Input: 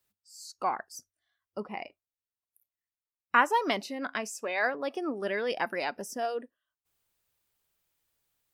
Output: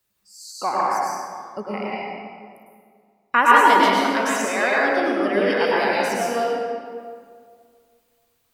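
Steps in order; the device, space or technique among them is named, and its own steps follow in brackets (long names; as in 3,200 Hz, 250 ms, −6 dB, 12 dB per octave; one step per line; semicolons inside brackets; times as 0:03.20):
stairwell (convolution reverb RT60 2.1 s, pre-delay 97 ms, DRR −6.5 dB)
0:03.43–0:04.42: high-shelf EQ 8,200 Hz +6.5 dB
level +4.5 dB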